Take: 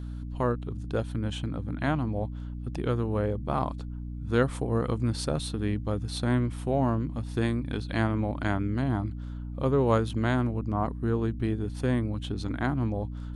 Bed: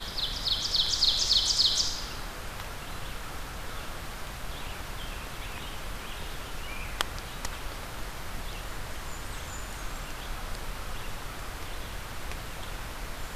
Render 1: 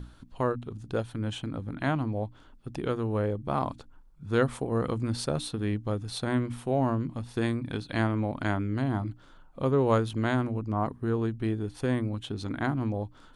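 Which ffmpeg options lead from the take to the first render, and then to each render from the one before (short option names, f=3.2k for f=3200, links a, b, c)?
-af "bandreject=f=60:t=h:w=6,bandreject=f=120:t=h:w=6,bandreject=f=180:t=h:w=6,bandreject=f=240:t=h:w=6,bandreject=f=300:t=h:w=6"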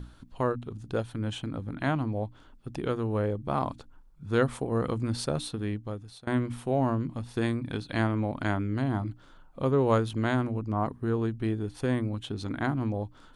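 -filter_complex "[0:a]asplit=2[a][b];[a]atrim=end=6.27,asetpts=PTS-STARTPTS,afade=t=out:st=5.16:d=1.11:c=qsin:silence=0.0707946[c];[b]atrim=start=6.27,asetpts=PTS-STARTPTS,afade=t=in:d=0.004:c=hsin:silence=0.0707946[d];[c][d]concat=n=2:v=0:a=1"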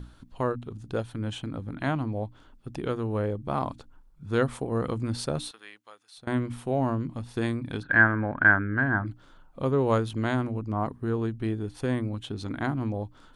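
-filter_complex "[0:a]asettb=1/sr,asplit=3[a][b][c];[a]atrim=end=5.514[d];[b]atrim=start=5.51:end=6.18,asetpts=PTS-STARTPTS,afade=t=in:d=0.004:c=qsin,afade=t=out:st=0.666:d=0.004:c=qsin,highpass=1.2k[e];[c]atrim=start=6.176[f];[d][e]acrossfade=d=0.004:c1=hsin:c2=qsin[g];[g][f]acrossfade=d=0.004:c1=qsin:c2=hsin,asplit=3[h][i][j];[h]afade=t=out:st=7.82:d=0.02[k];[i]lowpass=f=1.6k:t=q:w=13,afade=t=in:st=7.82:d=0.02,afade=t=out:st=9.05:d=0.02[l];[j]afade=t=in:st=9.05:d=0.02[m];[k][l][m]amix=inputs=3:normalize=0"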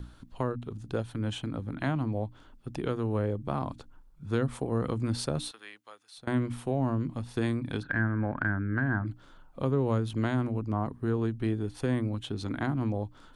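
-filter_complex "[0:a]acrossover=split=290[a][b];[b]acompressor=threshold=-29dB:ratio=10[c];[a][c]amix=inputs=2:normalize=0"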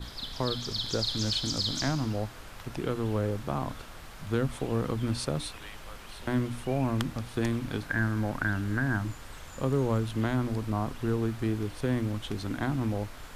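-filter_complex "[1:a]volume=-7.5dB[a];[0:a][a]amix=inputs=2:normalize=0"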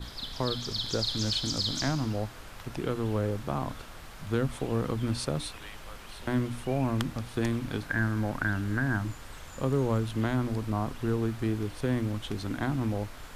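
-af anull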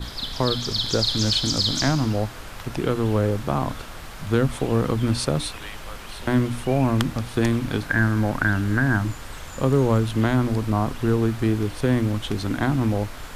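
-af "volume=8dB"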